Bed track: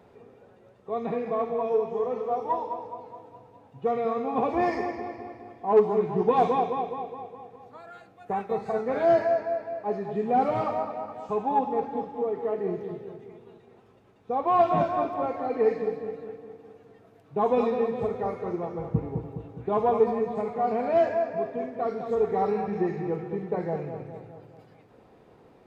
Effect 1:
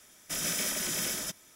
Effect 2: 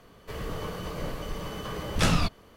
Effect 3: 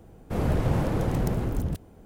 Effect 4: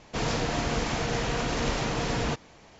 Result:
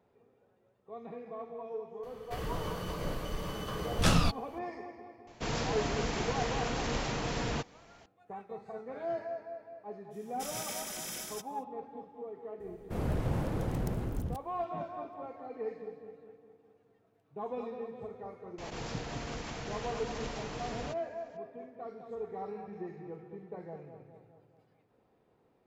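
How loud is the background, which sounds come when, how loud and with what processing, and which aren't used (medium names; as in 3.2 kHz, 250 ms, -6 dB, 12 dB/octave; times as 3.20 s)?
bed track -15 dB
2.03 s: add 2 -2 dB + dynamic bell 2.1 kHz, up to -4 dB, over -48 dBFS, Q 2.7
5.27 s: add 4 -5.5 dB
10.10 s: add 1 -8.5 dB, fades 0.05 s + band-stop 1.8 kHz, Q 17
12.60 s: add 3 -7.5 dB
18.58 s: add 4 -12.5 dB + swell ahead of each attack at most 35 dB/s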